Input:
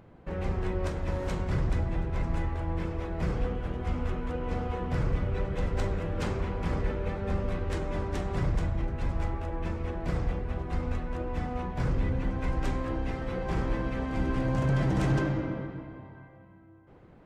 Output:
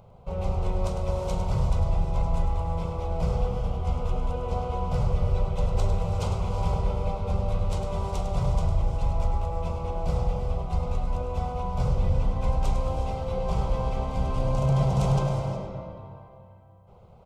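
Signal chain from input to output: fixed phaser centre 720 Hz, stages 4; echo 0.103 s -9.5 dB; non-linear reverb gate 0.39 s rising, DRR 7.5 dB; gain +5 dB

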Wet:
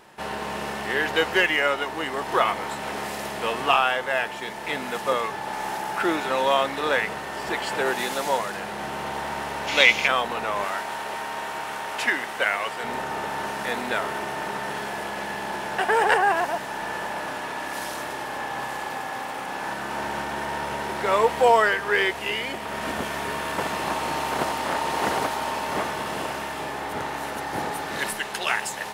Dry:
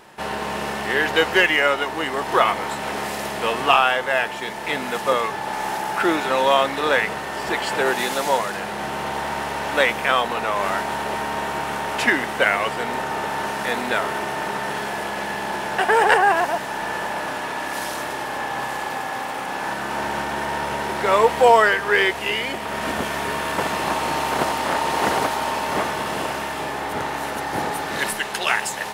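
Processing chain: 9.68–10.07 spectral gain 2000–7300 Hz +11 dB; 10.64–12.84 low shelf 350 Hz -11 dB; gain -4 dB

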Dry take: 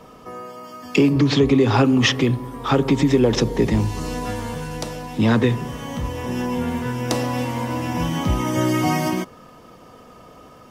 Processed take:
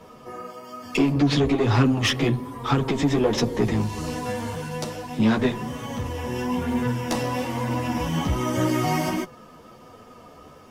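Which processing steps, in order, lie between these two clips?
tube stage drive 13 dB, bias 0.3; chorus voices 2, 1.1 Hz, delay 11 ms, depth 3 ms; gain +2 dB

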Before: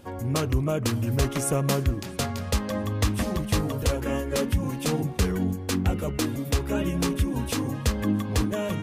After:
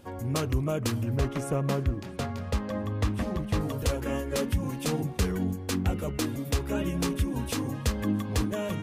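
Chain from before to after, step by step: 1.03–3.61 high shelf 3800 Hz -12 dB; gain -3 dB

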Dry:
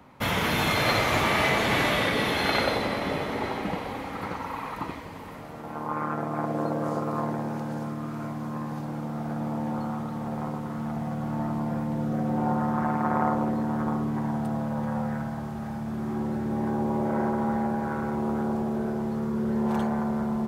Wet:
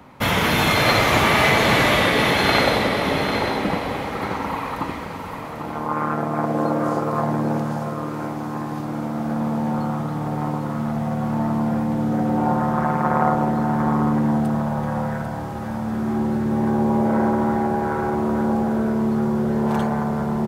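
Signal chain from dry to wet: echo 0.795 s -8 dB; gain +6.5 dB

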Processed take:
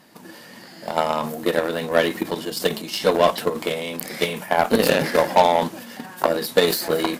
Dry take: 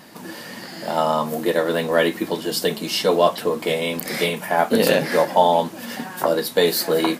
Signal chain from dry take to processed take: transient shaper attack +4 dB, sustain +8 dB; added harmonics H 5 -18 dB, 7 -16 dB, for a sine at 0 dBFS; gain -2.5 dB

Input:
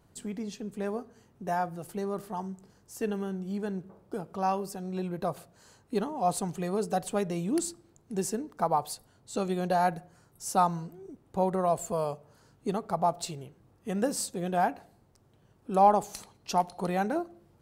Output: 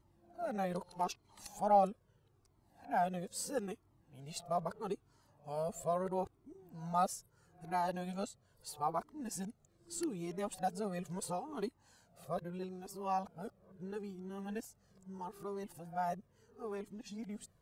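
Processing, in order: whole clip reversed; cascading flanger falling 0.77 Hz; gain -4 dB

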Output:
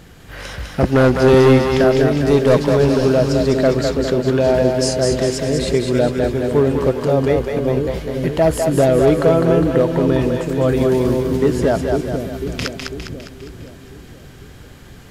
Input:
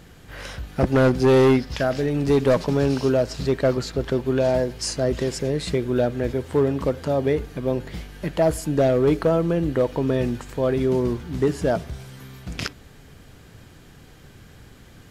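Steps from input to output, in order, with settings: 10.68–11.37 high shelf 7600 Hz +9 dB; split-band echo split 470 Hz, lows 0.498 s, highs 0.203 s, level -4 dB; gain +4.5 dB

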